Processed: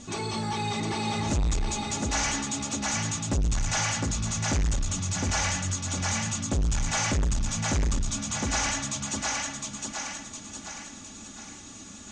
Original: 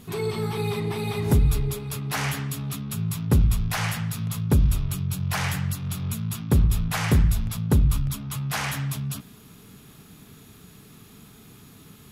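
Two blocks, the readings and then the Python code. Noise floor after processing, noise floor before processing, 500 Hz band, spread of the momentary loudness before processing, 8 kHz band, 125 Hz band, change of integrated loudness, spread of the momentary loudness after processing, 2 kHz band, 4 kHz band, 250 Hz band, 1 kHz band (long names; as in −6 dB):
−44 dBFS, −50 dBFS, −4.5 dB, 8 LU, +8.5 dB, −7.0 dB, −3.0 dB, 12 LU, +1.0 dB, +3.5 dB, −3.5 dB, +3.0 dB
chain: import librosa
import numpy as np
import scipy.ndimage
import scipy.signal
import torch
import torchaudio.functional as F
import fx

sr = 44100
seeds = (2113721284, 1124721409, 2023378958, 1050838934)

y = fx.peak_eq(x, sr, hz=710.0, db=6.5, octaves=0.37)
y = np.repeat(y[::2], 2)[:len(y)]
y = fx.peak_eq(y, sr, hz=6300.0, db=14.5, octaves=0.48)
y = y + 0.79 * np.pad(y, (int(3.5 * sr / 1000.0), 0))[:len(y)]
y = fx.echo_thinned(y, sr, ms=710, feedback_pct=47, hz=180.0, wet_db=-4.0)
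y = 10.0 ** (-22.0 / 20.0) * np.tanh(y / 10.0 ** (-22.0 / 20.0))
y = scipy.signal.sosfilt(scipy.signal.butter(8, 8400.0, 'lowpass', fs=sr, output='sos'), y)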